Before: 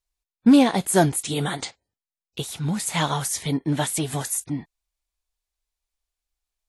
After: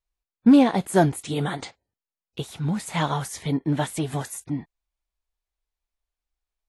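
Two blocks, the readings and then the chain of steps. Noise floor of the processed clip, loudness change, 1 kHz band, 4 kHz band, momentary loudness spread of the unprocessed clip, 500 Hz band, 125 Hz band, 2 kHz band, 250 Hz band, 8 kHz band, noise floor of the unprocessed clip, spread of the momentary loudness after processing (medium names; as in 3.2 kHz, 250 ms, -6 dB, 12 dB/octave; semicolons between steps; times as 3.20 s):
under -85 dBFS, -1.0 dB, -0.5 dB, -5.5 dB, 16 LU, -0.5 dB, 0.0 dB, -2.5 dB, 0.0 dB, -9.5 dB, under -85 dBFS, 18 LU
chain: treble shelf 3.5 kHz -11 dB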